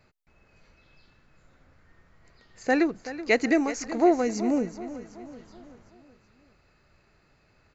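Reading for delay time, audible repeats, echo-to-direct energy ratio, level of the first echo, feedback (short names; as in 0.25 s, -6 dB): 0.378 s, 4, -13.0 dB, -14.0 dB, 49%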